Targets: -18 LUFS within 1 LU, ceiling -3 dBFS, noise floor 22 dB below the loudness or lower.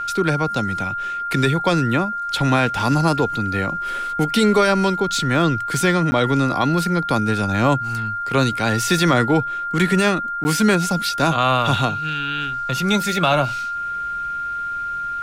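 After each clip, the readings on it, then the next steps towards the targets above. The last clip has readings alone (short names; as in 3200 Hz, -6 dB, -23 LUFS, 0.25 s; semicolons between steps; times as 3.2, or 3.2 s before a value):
dropouts 2; longest dropout 10 ms; steady tone 1400 Hz; tone level -23 dBFS; loudness -19.5 LUFS; peak -5.5 dBFS; loudness target -18.0 LUFS
-> interpolate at 6.11/10.44, 10 ms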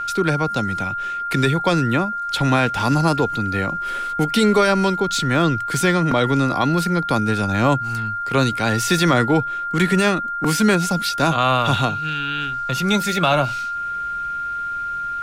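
dropouts 0; steady tone 1400 Hz; tone level -23 dBFS
-> notch 1400 Hz, Q 30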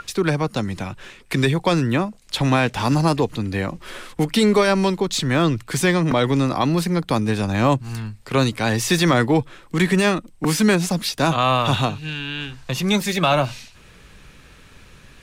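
steady tone none; loudness -20.0 LUFS; peak -6.0 dBFS; loudness target -18.0 LUFS
-> gain +2 dB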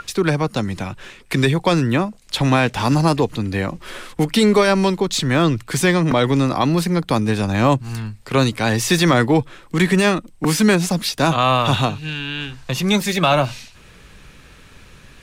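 loudness -18.0 LUFS; peak -4.0 dBFS; noise floor -46 dBFS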